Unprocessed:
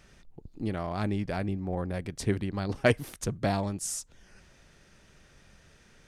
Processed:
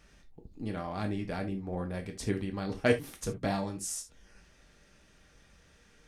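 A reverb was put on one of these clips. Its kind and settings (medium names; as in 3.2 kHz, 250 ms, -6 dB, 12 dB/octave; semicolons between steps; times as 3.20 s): gated-style reverb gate 100 ms falling, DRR 3 dB; trim -4.5 dB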